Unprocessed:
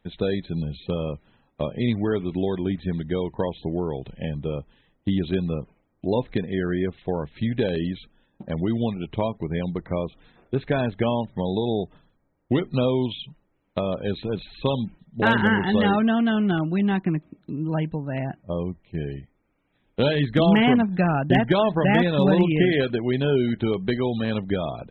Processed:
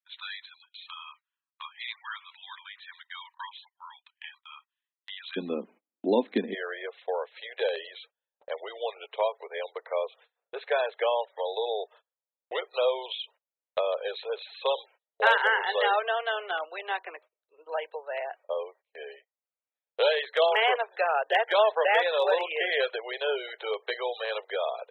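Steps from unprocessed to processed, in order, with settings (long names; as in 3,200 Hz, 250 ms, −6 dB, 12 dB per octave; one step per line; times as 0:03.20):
Butterworth high-pass 980 Hz 72 dB per octave, from 0:05.36 210 Hz, from 0:06.53 450 Hz
noise gate −52 dBFS, range −27 dB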